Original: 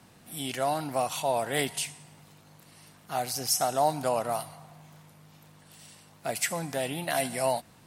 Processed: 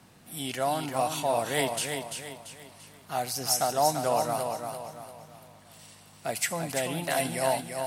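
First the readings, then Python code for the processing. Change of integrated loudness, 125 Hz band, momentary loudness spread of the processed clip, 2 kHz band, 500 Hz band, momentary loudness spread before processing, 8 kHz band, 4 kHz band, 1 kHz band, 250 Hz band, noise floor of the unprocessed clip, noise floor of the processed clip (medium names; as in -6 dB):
+0.5 dB, +1.5 dB, 17 LU, +1.0 dB, +1.0 dB, 9 LU, +1.0 dB, +1.0 dB, +1.0 dB, +1.0 dB, -57 dBFS, -55 dBFS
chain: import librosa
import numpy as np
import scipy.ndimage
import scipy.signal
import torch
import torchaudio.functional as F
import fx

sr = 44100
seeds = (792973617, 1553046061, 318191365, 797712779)

y = fx.echo_feedback(x, sr, ms=341, feedback_pct=40, wet_db=-6)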